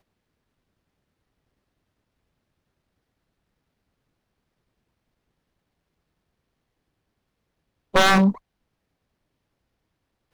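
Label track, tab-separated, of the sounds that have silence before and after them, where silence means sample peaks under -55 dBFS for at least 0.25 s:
7.930000	8.390000	sound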